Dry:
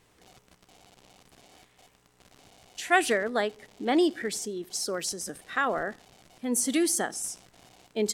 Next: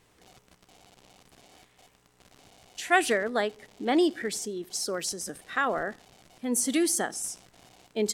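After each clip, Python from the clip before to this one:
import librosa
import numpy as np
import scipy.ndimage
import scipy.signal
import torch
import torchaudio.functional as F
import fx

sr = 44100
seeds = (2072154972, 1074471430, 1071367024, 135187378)

y = x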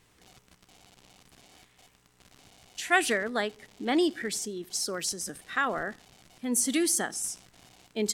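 y = fx.peak_eq(x, sr, hz=560.0, db=-5.0, octaves=1.7)
y = y * 10.0 ** (1.0 / 20.0)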